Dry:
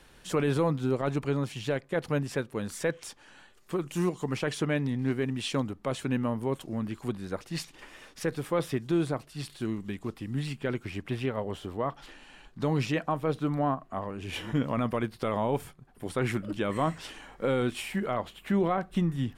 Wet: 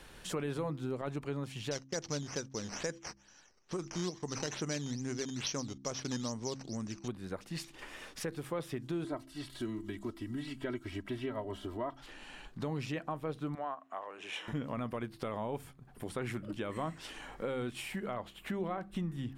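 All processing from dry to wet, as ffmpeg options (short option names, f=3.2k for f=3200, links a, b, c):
-filter_complex "[0:a]asettb=1/sr,asplit=3[a][b][c];[a]atrim=end=1.714[d];[b]atrim=start=1.71:end=7.08,asetpts=PTS-STARTPTS,afade=t=in:d=0.004:c=qsin,afade=t=out:st=5.366:d=0.004:c=qsin,agate=range=-13dB:threshold=-47dB:ratio=16:release=100:detection=peak,acrusher=samples=9:mix=1:aa=0.000001:lfo=1:lforange=9:lforate=2.3,lowpass=f=5.9k:t=q:w=7.2[e];[c]atrim=start=7.076[f];[d][e]acrossfade=d=0.004:c1=hsin:c2=qsin[g];[g][f]acrossfade=d=0.004:c1=qsin:c2=hsin,asettb=1/sr,asplit=3[h][i][j];[h]atrim=end=9.044[k];[i]atrim=start=9.04:end=12,asetpts=PTS-STARTPTS,afade=t=in:d=0.004:c=qsin,afade=t=out:st=2.956:d=0.004:c=qsin,bandreject=f=2.5k:w=9,aecho=1:1:3.1:0.81,atrim=end_sample=130536,acrossover=split=3500[l][m];[m]acompressor=threshold=-50dB:ratio=4:attack=1:release=60[n];[l][n]amix=inputs=2:normalize=0[o];[j]atrim=start=11.996[p];[k][o]acrossfade=d=0.004:c1=hsin:c2=qsin[q];[q][p]acrossfade=d=0.004:c1=qsin:c2=hsin,asettb=1/sr,asplit=3[r][s][t];[r]atrim=end=13.554[u];[s]atrim=start=13.55:end=14.48,asetpts=PTS-STARTPTS,afade=t=in:d=0.004:c=qsin,afade=t=out:st=0.926:d=0.004:c=qsin,highpass=610,lowpass=7.4k,bandreject=f=4.6k:w=5.3[v];[t]atrim=start=14.476[w];[u][v]acrossfade=d=0.004:c1=hsin:c2=qsin[x];[x][w]acrossfade=d=0.004:c1=qsin:c2=hsin,bandreject=f=66.63:t=h:w=4,bandreject=f=133.26:t=h:w=4,bandreject=f=199.89:t=h:w=4,bandreject=f=266.52:t=h:w=4,bandreject=f=333.15:t=h:w=4,acompressor=threshold=-46dB:ratio=2,volume=2.5dB"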